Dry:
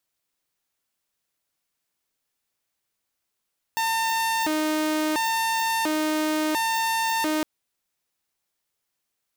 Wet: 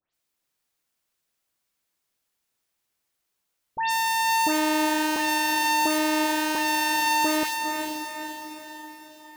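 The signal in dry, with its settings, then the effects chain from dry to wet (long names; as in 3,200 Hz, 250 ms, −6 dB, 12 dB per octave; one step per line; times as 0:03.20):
siren hi-lo 309–903 Hz 0.72 per second saw −19.5 dBFS 3.66 s
all-pass dispersion highs, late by 140 ms, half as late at 3,000 Hz
on a send: feedback delay with all-pass diffusion 460 ms, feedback 51%, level −6 dB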